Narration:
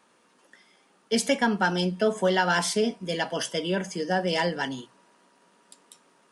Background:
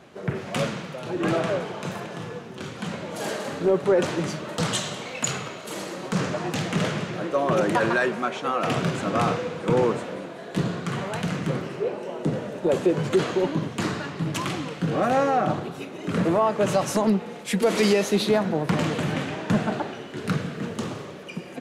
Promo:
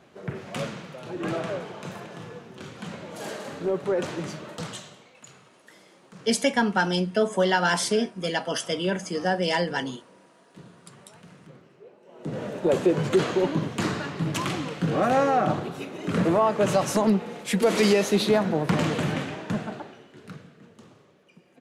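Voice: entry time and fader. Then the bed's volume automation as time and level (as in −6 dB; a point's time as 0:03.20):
5.15 s, +1.0 dB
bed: 0:04.45 −5.5 dB
0:05.23 −22.5 dB
0:12.01 −22.5 dB
0:12.43 0 dB
0:19.06 0 dB
0:20.63 −20.5 dB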